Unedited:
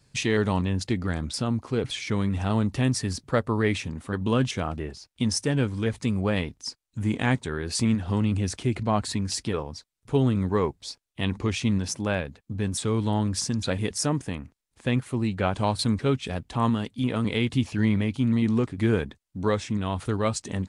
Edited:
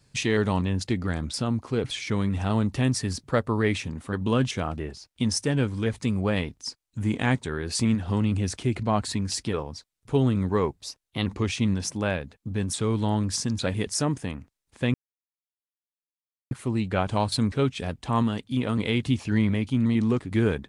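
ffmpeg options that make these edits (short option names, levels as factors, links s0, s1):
-filter_complex "[0:a]asplit=4[s0][s1][s2][s3];[s0]atrim=end=10.824[s4];[s1]atrim=start=10.82:end=11.3,asetpts=PTS-STARTPTS,asetrate=48069,aresample=44100,atrim=end_sample=19420,asetpts=PTS-STARTPTS[s5];[s2]atrim=start=11.296:end=14.98,asetpts=PTS-STARTPTS,afade=t=out:st=3.68:d=0.004:c=hsin,apad=pad_dur=1.57[s6];[s3]atrim=start=14.98,asetpts=PTS-STARTPTS,afade=t=in:d=0.004:c=hsin[s7];[s4][s5]acrossfade=d=0.004:c1=hsin:c2=hsin[s8];[s6][s7]concat=n=2:v=0:a=1[s9];[s8][s9]acrossfade=d=0.004:c1=hsin:c2=hsin"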